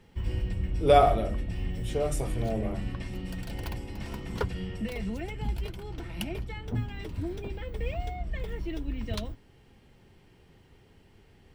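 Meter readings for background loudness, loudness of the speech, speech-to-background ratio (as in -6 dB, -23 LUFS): -35.5 LUFS, -27.0 LUFS, 8.5 dB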